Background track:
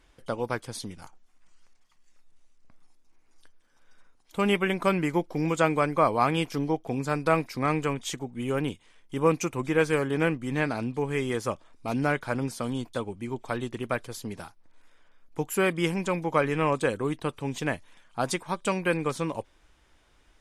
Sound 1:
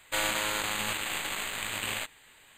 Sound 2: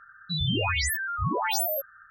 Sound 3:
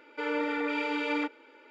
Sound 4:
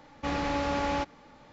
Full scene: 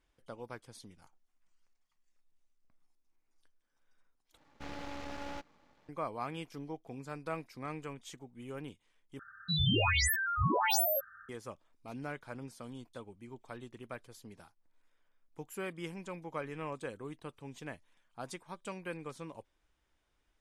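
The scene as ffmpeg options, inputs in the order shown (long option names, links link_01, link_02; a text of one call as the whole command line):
ffmpeg -i bed.wav -i cue0.wav -i cue1.wav -i cue2.wav -i cue3.wav -filter_complex "[0:a]volume=-15.5dB[link_01];[4:a]aeval=exprs='max(val(0),0)':channel_layout=same[link_02];[link_01]asplit=3[link_03][link_04][link_05];[link_03]atrim=end=4.374[link_06];[link_02]atrim=end=1.52,asetpts=PTS-STARTPTS,volume=-9.5dB[link_07];[link_04]atrim=start=5.886:end=9.194[link_08];[2:a]atrim=end=2.1,asetpts=PTS-STARTPTS,volume=-2.5dB[link_09];[link_05]atrim=start=11.286[link_10];[link_06][link_07]acrossfade=duration=0.004:curve1=hsin:curve2=hsin[link_11];[link_11][link_08]acrossfade=duration=0.004:curve1=hsin:curve2=hsin[link_12];[link_12][link_09]acrossfade=duration=0.004:curve1=hsin:curve2=hsin[link_13];[link_13][link_10]acrossfade=duration=0.004:curve1=hsin:curve2=hsin" out.wav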